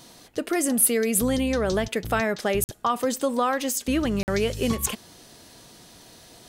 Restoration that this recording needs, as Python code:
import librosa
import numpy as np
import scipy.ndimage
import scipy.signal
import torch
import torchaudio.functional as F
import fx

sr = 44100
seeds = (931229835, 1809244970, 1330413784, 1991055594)

y = fx.fix_interpolate(x, sr, at_s=(2.64, 4.23), length_ms=49.0)